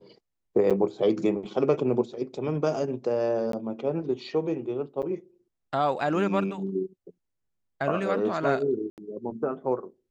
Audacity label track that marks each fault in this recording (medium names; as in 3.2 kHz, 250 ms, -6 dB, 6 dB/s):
0.700000	0.710000	dropout 6.9 ms
3.520000	3.530000	dropout 13 ms
5.020000	5.030000	dropout 7.5 ms
8.900000	8.980000	dropout 78 ms